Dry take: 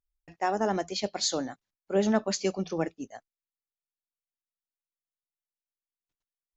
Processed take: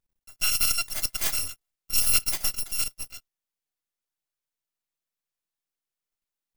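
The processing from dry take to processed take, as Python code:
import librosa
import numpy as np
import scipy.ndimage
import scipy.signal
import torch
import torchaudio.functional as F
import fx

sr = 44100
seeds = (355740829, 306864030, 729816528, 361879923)

y = fx.bit_reversed(x, sr, seeds[0], block=256)
y = np.maximum(y, 0.0)
y = y * 10.0 ** (6.0 / 20.0)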